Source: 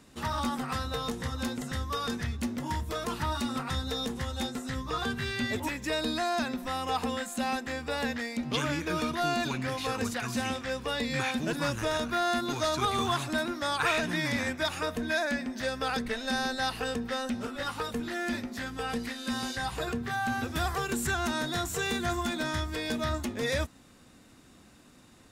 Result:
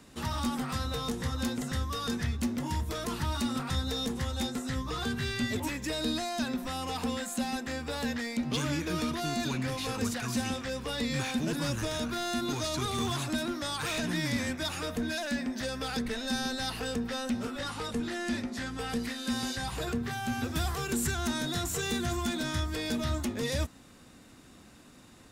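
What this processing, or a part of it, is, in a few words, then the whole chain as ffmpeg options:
one-band saturation: -filter_complex "[0:a]asettb=1/sr,asplit=3[a][b][c];[a]atrim=end=17.594[d];[b]atrim=start=17.59:end=18.79,asetpts=PTS-STARTPTS,afade=t=in:d=0.004:c=qsin,afade=t=out:st=1.196:d=0.004:c=qsin,lowpass=f=11k:w=0.5412,lowpass=f=11k:w=1.3066[e];[c]atrim=start=18.786[f];[d][e]acrossfade=d=0.004:c1=hsin:c2=qsin[g];[g][f]acrossfade=d=0.004:c1=qsin:c2=hsin,acrossover=split=350|3800[h][i][j];[i]asoftclip=type=tanh:threshold=-37.5dB[k];[h][k][j]amix=inputs=3:normalize=0,volume=2dB"

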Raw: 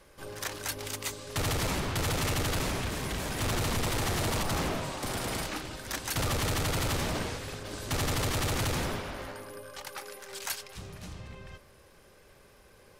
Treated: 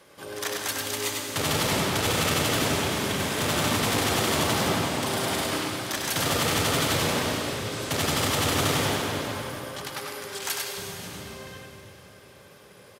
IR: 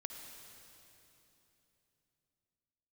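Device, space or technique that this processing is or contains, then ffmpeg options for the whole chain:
PA in a hall: -filter_complex "[0:a]highpass=140,equalizer=f=3.3k:t=o:w=0.26:g=3.5,aecho=1:1:99:0.631[a];[1:a]atrim=start_sample=2205[b];[a][b]afir=irnorm=-1:irlink=0,volume=8dB"

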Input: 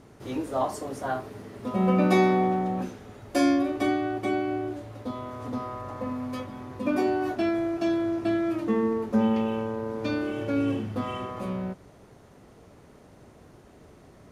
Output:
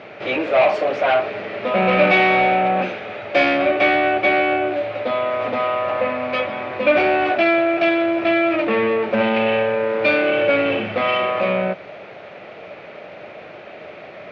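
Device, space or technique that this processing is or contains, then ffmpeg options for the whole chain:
overdrive pedal into a guitar cabinet: -filter_complex "[0:a]asplit=2[a][b];[b]highpass=f=720:p=1,volume=26dB,asoftclip=type=tanh:threshold=-9.5dB[c];[a][c]amix=inputs=2:normalize=0,lowpass=f=5.2k:p=1,volume=-6dB,highpass=110,equalizer=f=130:t=q:w=4:g=-3,equalizer=f=260:t=q:w=4:g=-9,equalizer=f=400:t=q:w=4:g=-3,equalizer=f=600:t=q:w=4:g=8,equalizer=f=1k:t=q:w=4:g=-7,equalizer=f=2.4k:t=q:w=4:g=10,lowpass=f=3.7k:w=0.5412,lowpass=f=3.7k:w=1.3066"

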